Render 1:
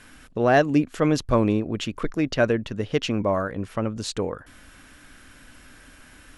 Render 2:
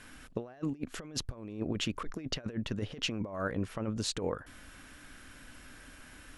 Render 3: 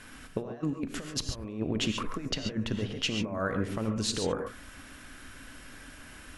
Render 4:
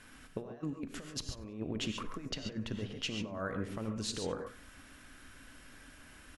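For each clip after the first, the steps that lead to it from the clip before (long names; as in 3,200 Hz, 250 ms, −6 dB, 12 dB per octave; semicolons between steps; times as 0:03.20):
compressor whose output falls as the input rises −27 dBFS, ratio −0.5; level −8 dB
reverb whose tail is shaped and stops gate 160 ms rising, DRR 5 dB; level +3 dB
repeating echo 96 ms, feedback 37%, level −23 dB; level −7 dB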